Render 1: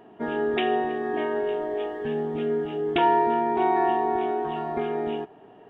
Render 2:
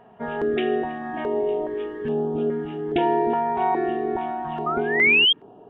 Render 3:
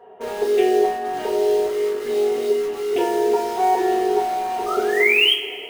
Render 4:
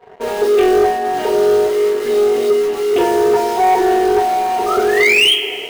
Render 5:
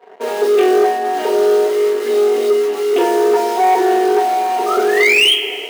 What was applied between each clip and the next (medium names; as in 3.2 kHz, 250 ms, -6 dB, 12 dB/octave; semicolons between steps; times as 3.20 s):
treble shelf 2.4 kHz -10.5 dB; painted sound rise, 4.66–5.33 s, 1.2–3.3 kHz -20 dBFS; step-sequenced notch 2.4 Hz 320–2000 Hz; trim +4 dB
resonant low shelf 290 Hz -9 dB, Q 3; in parallel at -9.5 dB: integer overflow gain 25 dB; on the sum: two-slope reverb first 0.3 s, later 2.2 s, from -18 dB, DRR -5 dB; trim -6 dB
waveshaping leveller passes 2
high-pass 240 Hz 24 dB/octave